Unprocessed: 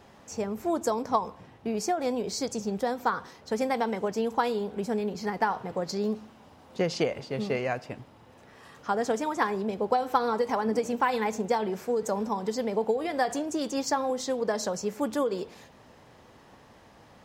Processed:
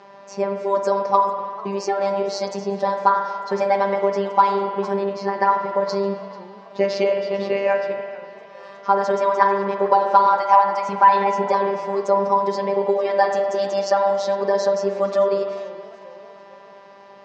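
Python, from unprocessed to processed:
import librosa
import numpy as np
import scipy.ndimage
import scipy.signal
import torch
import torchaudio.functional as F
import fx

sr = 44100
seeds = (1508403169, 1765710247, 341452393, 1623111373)

p1 = fx.robotise(x, sr, hz=198.0)
p2 = fx.low_shelf_res(p1, sr, hz=560.0, db=-12.0, q=3.0, at=(10.26, 10.89))
p3 = fx.rev_spring(p2, sr, rt60_s=2.0, pass_ms=(47,), chirp_ms=40, drr_db=5.5)
p4 = np.clip(10.0 ** (21.5 / 20.0) * p3, -1.0, 1.0) / 10.0 ** (21.5 / 20.0)
p5 = p3 + (p4 * librosa.db_to_amplitude(-10.0))
p6 = fx.cabinet(p5, sr, low_hz=140.0, low_slope=12, high_hz=5300.0, hz=(210.0, 540.0, 990.0, 3400.0), db=(-5, 7, 8, -4))
p7 = fx.echo_warbled(p6, sr, ms=447, feedback_pct=51, rate_hz=2.8, cents=165, wet_db=-22.0)
y = p7 * librosa.db_to_amplitude(5.5)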